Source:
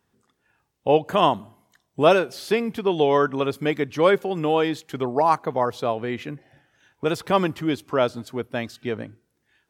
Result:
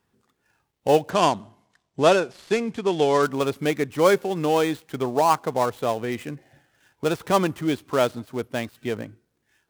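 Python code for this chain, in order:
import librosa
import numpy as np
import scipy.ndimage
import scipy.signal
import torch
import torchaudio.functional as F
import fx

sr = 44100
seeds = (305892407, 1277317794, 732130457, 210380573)

y = fx.dead_time(x, sr, dead_ms=0.083)
y = fx.cheby1_lowpass(y, sr, hz=7000.0, order=2, at=(1.1, 3.23))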